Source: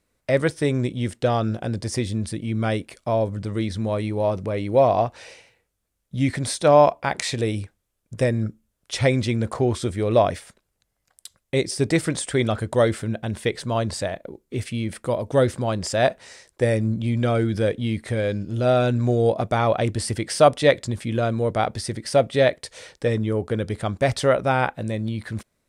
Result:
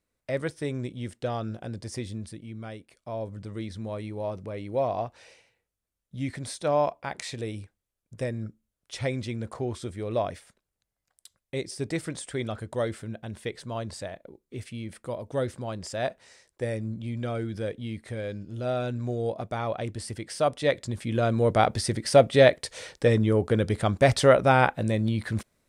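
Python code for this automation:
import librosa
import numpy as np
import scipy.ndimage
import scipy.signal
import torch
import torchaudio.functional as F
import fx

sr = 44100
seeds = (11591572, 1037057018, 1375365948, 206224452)

y = fx.gain(x, sr, db=fx.line((2.12, -9.5), (2.79, -17.5), (3.33, -10.0), (20.44, -10.0), (21.53, 1.0)))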